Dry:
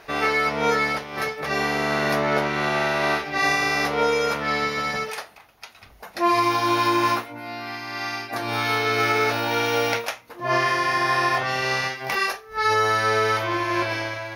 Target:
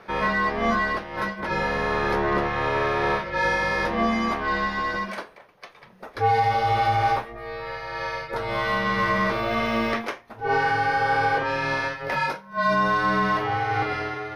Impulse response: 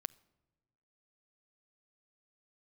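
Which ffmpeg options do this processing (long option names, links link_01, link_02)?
-filter_complex "[0:a]afreqshift=-240,asplit=2[link_01][link_02];[link_02]highpass=frequency=720:poles=1,volume=10dB,asoftclip=type=tanh:threshold=-8.5dB[link_03];[link_01][link_03]amix=inputs=2:normalize=0,lowpass=frequency=1000:poles=1,volume=-6dB"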